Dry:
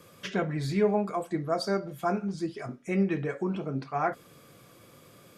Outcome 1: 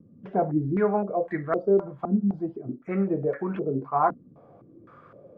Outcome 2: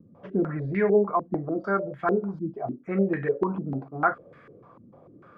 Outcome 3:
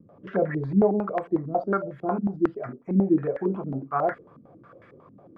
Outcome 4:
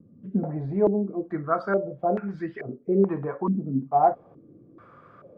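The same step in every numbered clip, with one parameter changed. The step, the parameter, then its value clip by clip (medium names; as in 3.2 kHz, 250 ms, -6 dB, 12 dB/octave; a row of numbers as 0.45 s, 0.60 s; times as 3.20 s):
step-sequenced low-pass, rate: 3.9 Hz, 6.7 Hz, 11 Hz, 2.3 Hz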